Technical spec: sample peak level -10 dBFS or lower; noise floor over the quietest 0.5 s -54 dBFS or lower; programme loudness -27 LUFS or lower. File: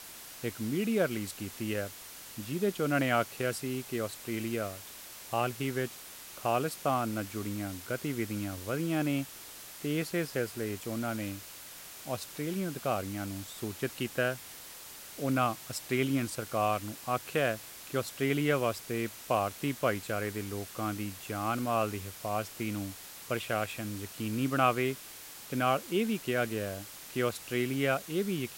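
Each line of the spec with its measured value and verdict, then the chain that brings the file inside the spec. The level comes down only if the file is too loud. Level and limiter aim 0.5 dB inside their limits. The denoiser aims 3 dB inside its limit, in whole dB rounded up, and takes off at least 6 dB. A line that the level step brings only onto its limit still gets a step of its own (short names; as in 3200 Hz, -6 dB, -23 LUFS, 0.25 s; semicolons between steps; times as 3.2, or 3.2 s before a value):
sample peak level -11.5 dBFS: OK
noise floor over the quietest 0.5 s -48 dBFS: fail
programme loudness -33.0 LUFS: OK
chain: denoiser 9 dB, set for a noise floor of -48 dBFS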